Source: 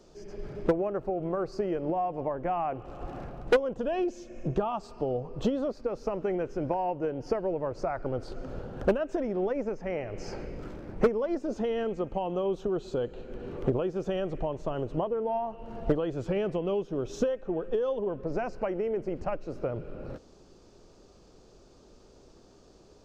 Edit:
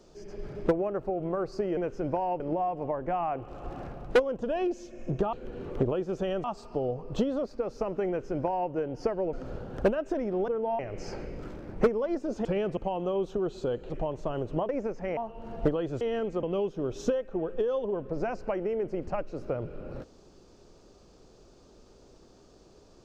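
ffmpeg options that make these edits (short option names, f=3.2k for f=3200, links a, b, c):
-filter_complex "[0:a]asplit=15[a][b][c][d][e][f][g][h][i][j][k][l][m][n][o];[a]atrim=end=1.772[p];[b]atrim=start=6.338:end=6.972[q];[c]atrim=start=1.768:end=4.702[r];[d]atrim=start=13.198:end=14.312[s];[e]atrim=start=4.698:end=7.592[t];[f]atrim=start=8.358:end=9.512[u];[g]atrim=start=15.098:end=15.412[v];[h]atrim=start=9.988:end=11.652[w];[i]atrim=start=16.248:end=16.572[x];[j]atrim=start=12.068:end=13.202[y];[k]atrim=start=14.308:end=15.102[z];[l]atrim=start=9.508:end=9.992[aa];[m]atrim=start=15.408:end=16.252[ab];[n]atrim=start=11.648:end=12.072[ac];[o]atrim=start=16.568[ad];[p][q]acrossfade=d=0.004:c1=hsin:c2=hsin[ae];[ae][r]acrossfade=d=0.004:c1=hsin:c2=hsin[af];[af][s]acrossfade=d=0.004:c1=hsin:c2=hsin[ag];[ag][t]acrossfade=d=0.004:c1=hsin:c2=hsin[ah];[ah][u]acrossfade=d=0.004:c1=hsin:c2=hsin[ai];[ai][v]acrossfade=d=0.004:c1=hsin:c2=hsin[aj];[aj][w]acrossfade=d=0.004:c1=hsin:c2=hsin[ak];[ak][x]acrossfade=d=0.004:c1=hsin:c2=hsin[al];[al][y]acrossfade=d=0.004:c1=hsin:c2=hsin[am];[am][z]acrossfade=d=0.004:c1=hsin:c2=hsin[an];[an][aa]acrossfade=d=0.004:c1=hsin:c2=hsin[ao];[ao][ab]acrossfade=d=0.004:c1=hsin:c2=hsin[ap];[ap][ac]acrossfade=d=0.004:c1=hsin:c2=hsin[aq];[aq][ad]acrossfade=d=0.004:c1=hsin:c2=hsin"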